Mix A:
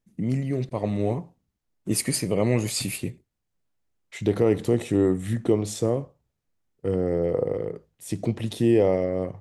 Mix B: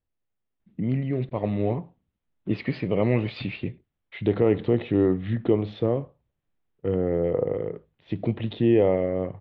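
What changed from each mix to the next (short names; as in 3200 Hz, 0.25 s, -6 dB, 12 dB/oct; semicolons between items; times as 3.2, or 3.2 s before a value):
first voice: entry +0.60 s; master: add steep low-pass 3700 Hz 48 dB/oct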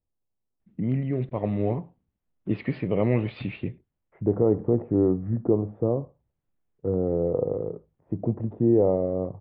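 second voice: add LPF 1100 Hz 24 dB/oct; master: add air absorption 290 m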